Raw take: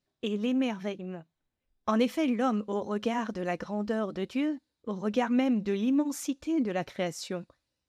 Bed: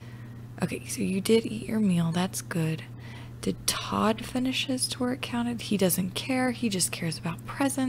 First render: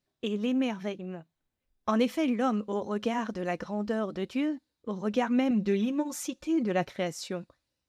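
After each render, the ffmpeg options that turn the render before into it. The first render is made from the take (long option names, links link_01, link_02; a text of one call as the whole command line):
ffmpeg -i in.wav -filter_complex "[0:a]asettb=1/sr,asplit=3[link_01][link_02][link_03];[link_01]atrim=end=5.504[link_04];[link_02]atrim=start=5.5:end=6.85,asetpts=PTS-STARTPTS,afade=type=in:duration=0.004:curve=qsin,afade=type=out:start_time=1.346:duration=0.004:curve=qsin,aecho=1:1:5.5:0.58,atrim=end_sample=59535[link_05];[link_03]atrim=start=6.846[link_06];[link_04][link_05]acrossfade=duration=0.004:curve1=hsin:curve2=qsin[link_07];[link_07][link_06]acrossfade=duration=0.004:curve1=qsin:curve2=hsin" out.wav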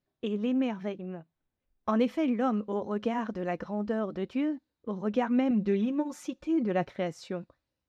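ffmpeg -i in.wav -af "lowpass=frequency=1900:poles=1" out.wav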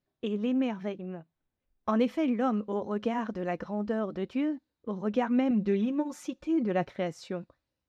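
ffmpeg -i in.wav -af anull out.wav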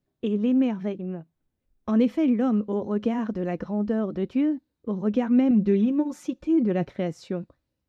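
ffmpeg -i in.wav -filter_complex "[0:a]acrossover=split=450|1700[link_01][link_02][link_03];[link_01]acontrast=89[link_04];[link_02]alimiter=level_in=6dB:limit=-24dB:level=0:latency=1,volume=-6dB[link_05];[link_04][link_05][link_03]amix=inputs=3:normalize=0" out.wav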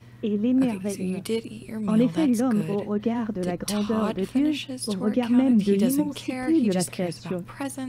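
ffmpeg -i in.wav -i bed.wav -filter_complex "[1:a]volume=-5dB[link_01];[0:a][link_01]amix=inputs=2:normalize=0" out.wav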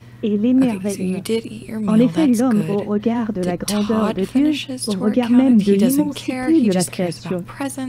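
ffmpeg -i in.wav -af "volume=6.5dB" out.wav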